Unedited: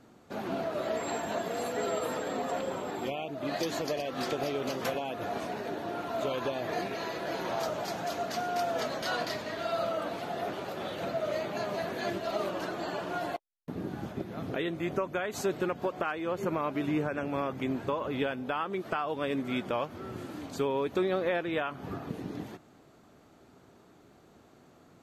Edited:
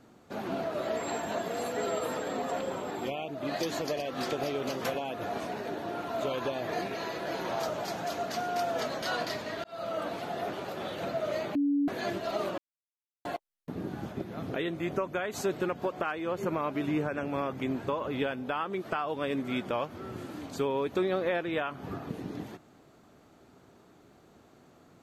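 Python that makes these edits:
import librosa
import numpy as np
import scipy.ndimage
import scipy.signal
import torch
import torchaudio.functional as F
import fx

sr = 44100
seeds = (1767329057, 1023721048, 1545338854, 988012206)

y = fx.edit(x, sr, fx.fade_in_span(start_s=9.64, length_s=0.35),
    fx.bleep(start_s=11.55, length_s=0.33, hz=285.0, db=-23.5),
    fx.silence(start_s=12.58, length_s=0.67), tone=tone)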